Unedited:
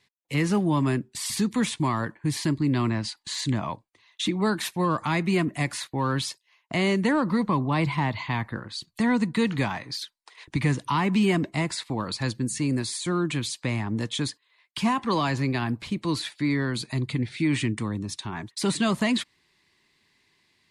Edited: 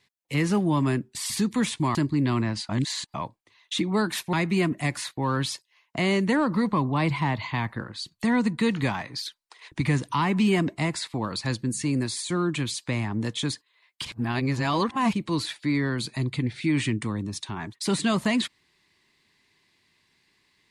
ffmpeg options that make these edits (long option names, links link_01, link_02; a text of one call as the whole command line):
ffmpeg -i in.wav -filter_complex "[0:a]asplit=7[link_01][link_02][link_03][link_04][link_05][link_06][link_07];[link_01]atrim=end=1.952[link_08];[link_02]atrim=start=2.428:end=3.172[link_09];[link_03]atrim=start=3.168:end=3.622,asetpts=PTS-STARTPTS,areverse[link_10];[link_04]atrim=start=3.618:end=4.812[link_11];[link_05]atrim=start=5.088:end=14.812[link_12];[link_06]atrim=start=14.808:end=15.892,asetpts=PTS-STARTPTS,areverse[link_13];[link_07]atrim=start=15.888[link_14];[link_08][link_09]acrossfade=duration=0.004:curve1=hsin:curve2=hsin[link_15];[link_15][link_10]acrossfade=duration=0.004:curve1=hsin:curve2=hsin[link_16];[link_16][link_11]acrossfade=duration=0.004:curve1=hsin:curve2=hsin[link_17];[link_17][link_12]acrossfade=duration=0.004:curve1=hsin:curve2=hsin[link_18];[link_18][link_13]acrossfade=duration=0.004:curve1=hsin:curve2=hsin[link_19];[link_19][link_14]acrossfade=duration=0.004:curve1=hsin:curve2=hsin" out.wav